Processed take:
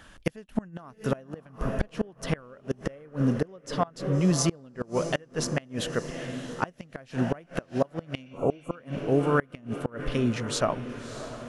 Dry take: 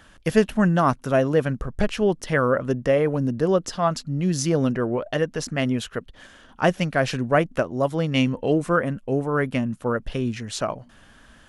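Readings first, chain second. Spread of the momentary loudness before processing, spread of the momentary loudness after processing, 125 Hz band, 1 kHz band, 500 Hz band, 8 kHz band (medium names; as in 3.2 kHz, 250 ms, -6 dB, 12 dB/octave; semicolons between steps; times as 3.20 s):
7 LU, 11 LU, -5.0 dB, -8.0 dB, -8.0 dB, -1.0 dB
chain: echo that smears into a reverb 624 ms, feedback 55%, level -13 dB; inverted gate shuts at -12 dBFS, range -28 dB; spectral replace 8.28–8.73 s, 1.4–6.3 kHz before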